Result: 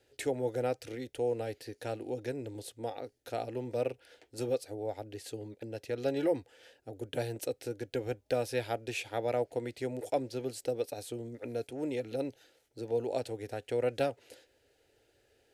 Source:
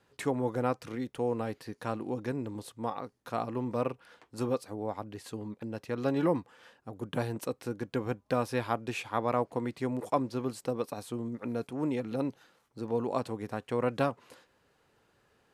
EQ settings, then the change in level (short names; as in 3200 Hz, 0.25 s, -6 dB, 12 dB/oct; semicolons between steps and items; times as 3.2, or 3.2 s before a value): dynamic EQ 300 Hz, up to -4 dB, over -40 dBFS, Q 1.1; fixed phaser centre 450 Hz, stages 4; +2.5 dB